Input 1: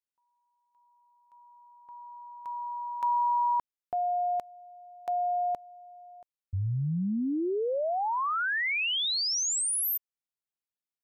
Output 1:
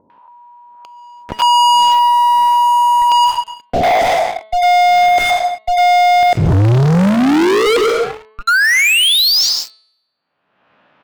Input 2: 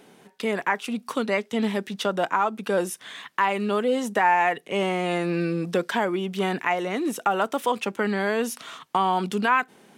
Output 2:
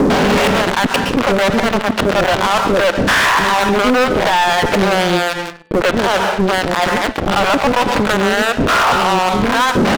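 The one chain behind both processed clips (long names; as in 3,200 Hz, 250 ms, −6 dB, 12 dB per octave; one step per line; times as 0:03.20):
peak hold with a rise ahead of every peak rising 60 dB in 0.52 s
loudspeaker in its box 170–2,400 Hz, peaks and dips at 360 Hz −4 dB, 580 Hz +5 dB, 2,100 Hz −8 dB
gate with flip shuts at −25 dBFS, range −37 dB
in parallel at −9.5 dB: fuzz pedal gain 58 dB, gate −57 dBFS
on the sum: multiband delay without the direct sound lows, highs 100 ms, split 450 Hz
dense smooth reverb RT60 0.67 s, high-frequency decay 0.7×, pre-delay 105 ms, DRR 18 dB
reversed playback
downward compressor 5 to 1, threshold −39 dBFS
reversed playback
high-frequency loss of the air 74 metres
leveller curve on the samples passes 5
hum removal 217.1 Hz, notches 21
upward compression, threshold −46 dBFS
boost into a limiter +29 dB
level −7.5 dB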